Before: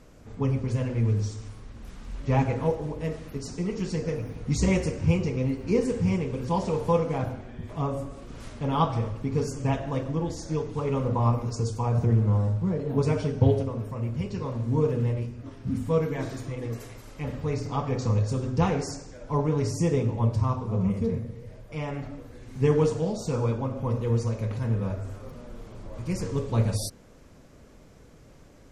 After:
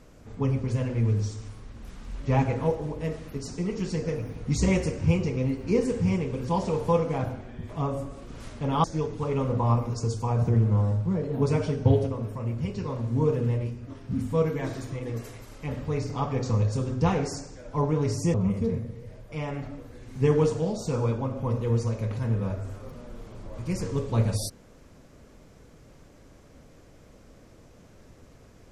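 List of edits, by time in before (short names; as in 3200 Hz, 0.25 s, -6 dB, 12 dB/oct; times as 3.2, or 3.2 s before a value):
8.84–10.4 cut
19.9–20.74 cut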